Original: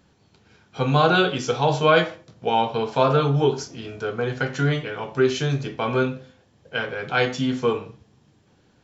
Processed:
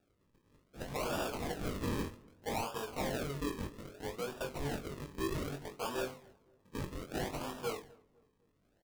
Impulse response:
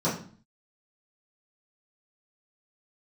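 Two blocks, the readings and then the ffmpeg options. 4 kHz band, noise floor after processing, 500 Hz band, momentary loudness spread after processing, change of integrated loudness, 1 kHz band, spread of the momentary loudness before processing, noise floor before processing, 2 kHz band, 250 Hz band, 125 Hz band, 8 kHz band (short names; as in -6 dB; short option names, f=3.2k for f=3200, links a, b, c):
-17.0 dB, -74 dBFS, -18.0 dB, 8 LU, -17.0 dB, -18.0 dB, 12 LU, -60 dBFS, -19.0 dB, -14.5 dB, -18.5 dB, n/a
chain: -filter_complex "[0:a]aderivative,acrossover=split=730[a][b];[a]dynaudnorm=f=560:g=5:m=8.5dB[c];[c][b]amix=inputs=2:normalize=0,acrusher=samples=42:mix=1:aa=0.000001:lfo=1:lforange=42:lforate=0.63,aeval=exprs='0.0282*(abs(mod(val(0)/0.0282+3,4)-2)-1)':c=same,asplit=2[d][e];[e]adelay=21,volume=-6dB[f];[d][f]amix=inputs=2:normalize=0,asplit=2[g][h];[h]adelay=253,lowpass=f=1k:p=1,volume=-23.5dB,asplit=2[i][j];[j]adelay=253,lowpass=f=1k:p=1,volume=0.47,asplit=2[k][l];[l]adelay=253,lowpass=f=1k:p=1,volume=0.47[m];[i][k][m]amix=inputs=3:normalize=0[n];[g][n]amix=inputs=2:normalize=0"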